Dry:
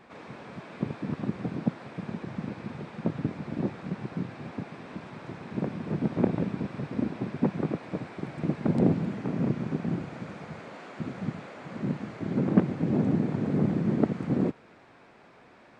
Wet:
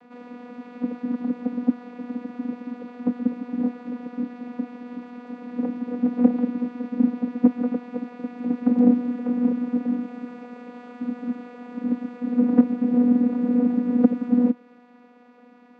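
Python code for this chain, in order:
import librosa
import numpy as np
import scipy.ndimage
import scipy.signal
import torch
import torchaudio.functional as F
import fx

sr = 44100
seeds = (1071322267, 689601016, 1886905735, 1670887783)

y = fx.vocoder(x, sr, bands=16, carrier='saw', carrier_hz=244.0)
y = y * librosa.db_to_amplitude(7.0)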